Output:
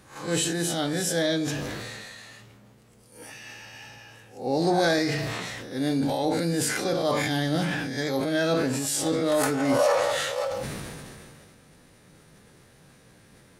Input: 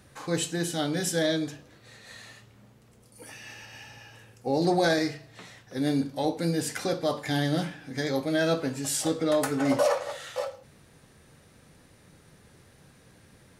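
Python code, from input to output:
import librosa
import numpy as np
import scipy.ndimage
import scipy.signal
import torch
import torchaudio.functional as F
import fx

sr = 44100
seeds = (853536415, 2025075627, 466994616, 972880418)

y = fx.spec_swells(x, sr, rise_s=0.37)
y = fx.peak_eq(y, sr, hz=81.0, db=-5.5, octaves=0.62)
y = fx.sustainer(y, sr, db_per_s=24.0)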